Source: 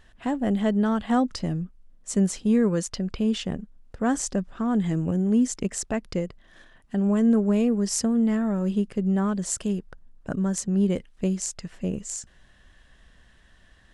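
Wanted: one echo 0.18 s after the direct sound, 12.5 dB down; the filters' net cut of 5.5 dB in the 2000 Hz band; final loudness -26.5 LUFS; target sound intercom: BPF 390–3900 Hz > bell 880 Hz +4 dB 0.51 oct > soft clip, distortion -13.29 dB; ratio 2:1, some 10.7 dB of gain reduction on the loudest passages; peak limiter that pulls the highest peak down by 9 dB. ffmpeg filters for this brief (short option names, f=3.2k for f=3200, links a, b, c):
-af "equalizer=f=2k:t=o:g=-7.5,acompressor=threshold=-37dB:ratio=2,alimiter=level_in=3dB:limit=-24dB:level=0:latency=1,volume=-3dB,highpass=390,lowpass=3.9k,equalizer=f=880:t=o:w=0.51:g=4,aecho=1:1:180:0.237,asoftclip=threshold=-37dB,volume=19.5dB"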